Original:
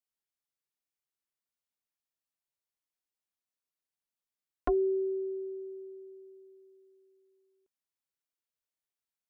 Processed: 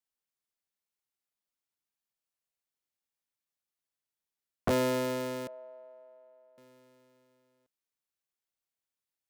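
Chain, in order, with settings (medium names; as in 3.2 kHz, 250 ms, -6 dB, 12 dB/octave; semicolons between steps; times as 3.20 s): cycle switcher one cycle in 3, inverted; 5.47–6.58 s: ladder band-pass 690 Hz, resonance 75%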